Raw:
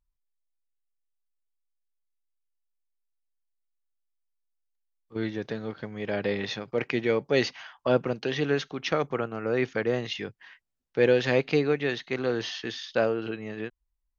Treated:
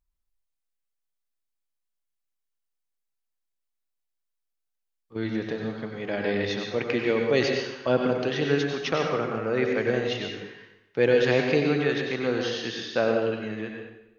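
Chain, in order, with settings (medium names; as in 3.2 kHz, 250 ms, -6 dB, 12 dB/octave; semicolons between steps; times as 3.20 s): plate-style reverb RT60 0.91 s, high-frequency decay 0.9×, pre-delay 80 ms, DRR 1.5 dB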